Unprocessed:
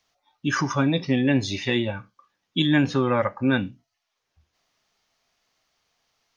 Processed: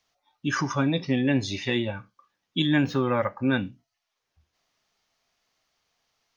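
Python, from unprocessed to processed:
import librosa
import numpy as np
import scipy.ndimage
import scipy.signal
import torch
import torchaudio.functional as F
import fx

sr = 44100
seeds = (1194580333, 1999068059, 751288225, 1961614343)

y = fx.resample_linear(x, sr, factor=2, at=(2.84, 3.38))
y = F.gain(torch.from_numpy(y), -2.5).numpy()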